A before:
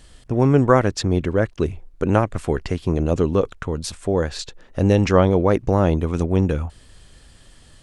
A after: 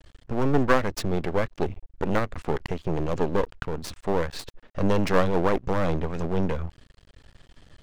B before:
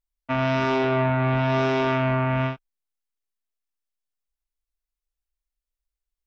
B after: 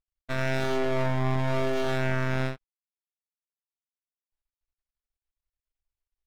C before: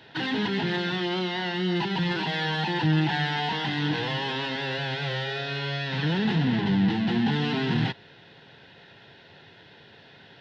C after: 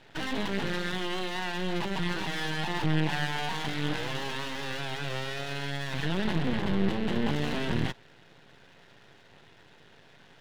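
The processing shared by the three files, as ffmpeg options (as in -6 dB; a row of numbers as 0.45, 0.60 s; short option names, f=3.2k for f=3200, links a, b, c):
-af "adynamicsmooth=sensitivity=3:basefreq=4.5k,aeval=exprs='max(val(0),0)':c=same"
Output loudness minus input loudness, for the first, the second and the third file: -7.0, -5.5, -5.0 LU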